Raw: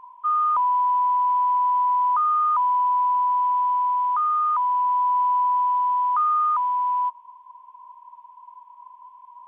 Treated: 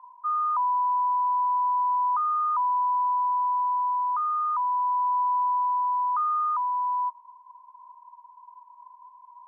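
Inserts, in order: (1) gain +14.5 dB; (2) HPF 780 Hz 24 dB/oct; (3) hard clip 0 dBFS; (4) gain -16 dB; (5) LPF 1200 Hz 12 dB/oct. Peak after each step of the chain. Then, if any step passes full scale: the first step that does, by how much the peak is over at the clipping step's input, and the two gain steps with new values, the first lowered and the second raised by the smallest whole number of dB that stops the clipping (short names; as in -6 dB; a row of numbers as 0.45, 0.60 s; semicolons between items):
-0.5, -1.5, -1.5, -17.5, -19.5 dBFS; no overload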